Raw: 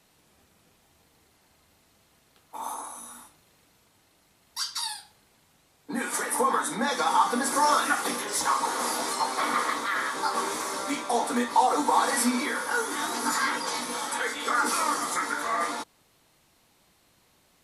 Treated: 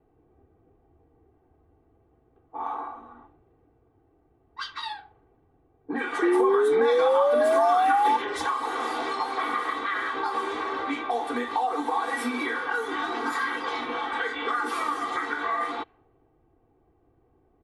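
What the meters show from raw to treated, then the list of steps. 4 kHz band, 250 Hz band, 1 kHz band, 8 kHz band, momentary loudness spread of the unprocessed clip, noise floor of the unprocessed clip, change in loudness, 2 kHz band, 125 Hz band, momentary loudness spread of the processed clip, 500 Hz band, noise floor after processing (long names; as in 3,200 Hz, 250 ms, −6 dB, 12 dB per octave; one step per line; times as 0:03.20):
−5.0 dB, +0.5 dB, 0.0 dB, −17.0 dB, 13 LU, −64 dBFS, +0.5 dB, 0.0 dB, can't be measured, 15 LU, +8.0 dB, −65 dBFS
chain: low-pass that shuts in the quiet parts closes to 520 Hz, open at −23 dBFS
flat-topped bell 7,700 Hz −15 dB
comb filter 2.6 ms, depth 74%
downward compressor 3 to 1, threshold −31 dBFS, peak gain reduction 12 dB
sound drawn into the spectrogram rise, 0:06.22–0:08.17, 340–890 Hz −25 dBFS
level +4 dB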